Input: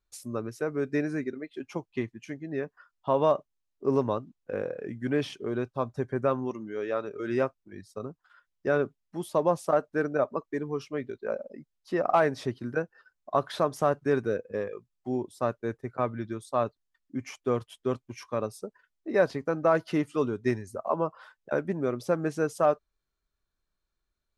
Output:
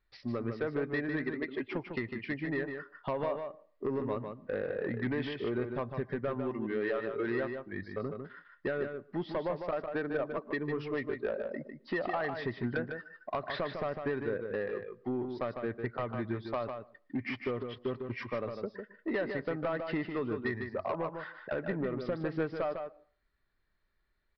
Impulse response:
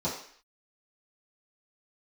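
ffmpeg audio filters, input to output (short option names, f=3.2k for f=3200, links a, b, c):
-filter_complex "[0:a]lowpass=f=3.5k:p=1,equalizer=f=1.9k:t=o:w=0.3:g=13.5,acompressor=threshold=-32dB:ratio=8,aresample=11025,asoftclip=type=tanh:threshold=-29.5dB,aresample=44100,asplit=2[a][b];[b]adelay=151.6,volume=-6dB,highshelf=f=4k:g=-3.41[c];[a][c]amix=inputs=2:normalize=0,asplit=2[d][e];[1:a]atrim=start_sample=2205,asetrate=52920,aresample=44100,adelay=110[f];[e][f]afir=irnorm=-1:irlink=0,volume=-30.5dB[g];[d][g]amix=inputs=2:normalize=0,volume=4dB"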